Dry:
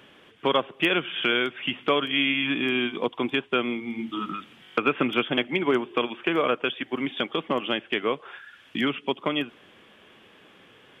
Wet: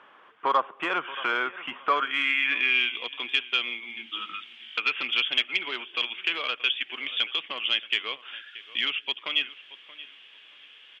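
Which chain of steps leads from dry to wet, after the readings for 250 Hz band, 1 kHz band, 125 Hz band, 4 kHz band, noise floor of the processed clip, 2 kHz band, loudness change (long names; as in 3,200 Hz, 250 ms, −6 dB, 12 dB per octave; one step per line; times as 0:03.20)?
−17.0 dB, 0.0 dB, below −20 dB, +3.0 dB, −53 dBFS, +1.5 dB, −0.5 dB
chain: repeating echo 628 ms, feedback 23%, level −19 dB
sine wavefolder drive 4 dB, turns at −8.5 dBFS
band-pass filter sweep 1,100 Hz → 3,000 Hz, 0:01.78–0:02.98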